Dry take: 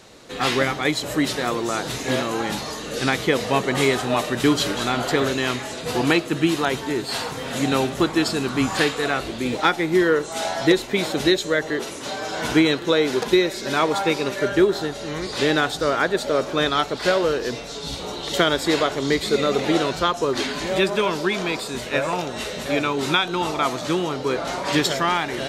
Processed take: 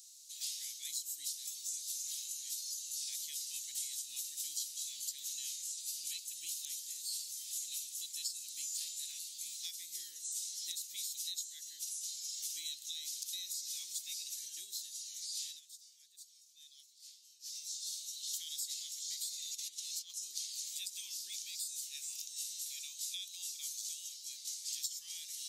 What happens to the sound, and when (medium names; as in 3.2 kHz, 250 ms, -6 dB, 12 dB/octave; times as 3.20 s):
15.43–17.56 s: dip -17.5 dB, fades 0.17 s
19.51–20.10 s: compressor with a negative ratio -23 dBFS, ratio -0.5
22.13–24.24 s: brick-wall FIR high-pass 480 Hz
whole clip: inverse Chebyshev high-pass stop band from 1.5 kHz, stop band 70 dB; peaking EQ 9 kHz -13.5 dB 2.4 oct; compression 4:1, threshold -53 dBFS; trim +15 dB